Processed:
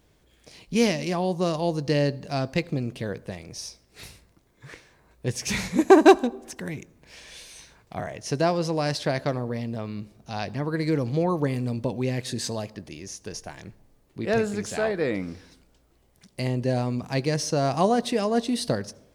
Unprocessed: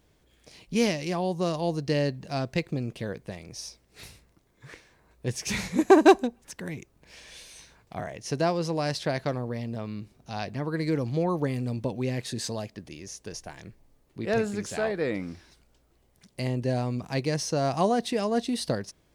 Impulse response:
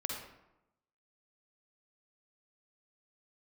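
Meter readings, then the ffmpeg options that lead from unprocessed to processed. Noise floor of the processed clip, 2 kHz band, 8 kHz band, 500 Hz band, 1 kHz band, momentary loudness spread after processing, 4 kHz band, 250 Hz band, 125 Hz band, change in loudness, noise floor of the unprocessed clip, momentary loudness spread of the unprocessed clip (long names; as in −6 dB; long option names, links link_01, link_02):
−62 dBFS, +2.5 dB, +2.5 dB, +2.5 dB, +2.5 dB, 16 LU, +2.5 dB, +2.5 dB, +2.5 dB, +2.5 dB, −65 dBFS, 16 LU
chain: -filter_complex "[0:a]asplit=2[link_01][link_02];[link_02]equalizer=frequency=2400:width=1.3:gain=-8[link_03];[1:a]atrim=start_sample=2205,adelay=21[link_04];[link_03][link_04]afir=irnorm=-1:irlink=0,volume=-19.5dB[link_05];[link_01][link_05]amix=inputs=2:normalize=0,volume=2.5dB"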